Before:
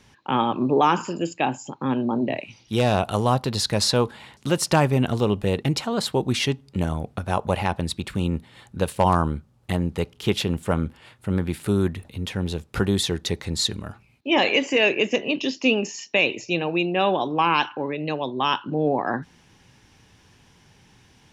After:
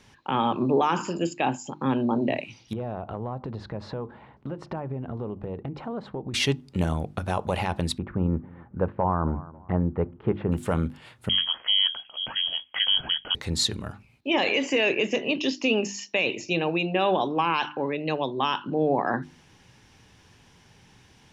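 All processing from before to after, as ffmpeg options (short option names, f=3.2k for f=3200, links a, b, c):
-filter_complex "[0:a]asettb=1/sr,asplit=3[a][b][c];[a]atrim=end=2.734[d];[b]atrim=start=2.73:end=6.34,asetpts=PTS-STARTPTS,afade=t=in:d=0.004:c=qsin,afade=t=out:st=3.606:d=0.004:c=qsin,lowpass=1.1k,acompressor=threshold=-29dB:ratio=6:attack=3.2:release=140:knee=1:detection=peak[e];[c]atrim=start=6.336[f];[d][e]acrossfade=d=0.004:c1=hsin:c2=qsin[g];[g][f]acrossfade=d=0.004:c1=qsin:c2=hsin,asettb=1/sr,asplit=3[h][i][j];[h]atrim=end=7.984[k];[i]atrim=start=7.98:end=10.52,asetpts=PTS-STARTPTS,afade=t=in:d=0.004:c=qsin,afade=t=out:st=2.536:d=0.004:c=qsin,lowpass=f=1.5k:w=0.5412,lowpass=f=1.5k:w=1.3066,aecho=1:1:272|544:0.0708|0.0198,atrim=end_sample=112014[l];[j]atrim=start=10.516[m];[k][l]acrossfade=d=0.004:c1=hsin:c2=qsin[n];[n][m]acrossfade=d=0.004:c1=qsin:c2=hsin,asettb=1/sr,asplit=3[o][p][q];[o]atrim=end=11.294[r];[p]atrim=start=11.29:end=13.35,asetpts=PTS-STARTPTS,afade=t=in:d=0.004:c=qsin,afade=t=out:st=2.056:d=0.004:c=qsin,highpass=110,lowpass=f=2.9k:t=q:w=0.5098,lowpass=f=2.9k:t=q:w=0.6013,lowpass=f=2.9k:t=q:w=0.9,lowpass=f=2.9k:t=q:w=2.563,afreqshift=-3400[s];[q]atrim=start=13.346[t];[r][s]acrossfade=d=0.004:c1=hsin:c2=qsin[u];[u][t]acrossfade=d=0.004:c1=qsin:c2=hsin,highshelf=f=11k:g=-4,alimiter=limit=-13dB:level=0:latency=1:release=29,bandreject=f=50:t=h:w=6,bandreject=f=100:t=h:w=6,bandreject=f=150:t=h:w=6,bandreject=f=200:t=h:w=6,bandreject=f=250:t=h:w=6,bandreject=f=300:t=h:w=6,bandreject=f=350:t=h:w=6"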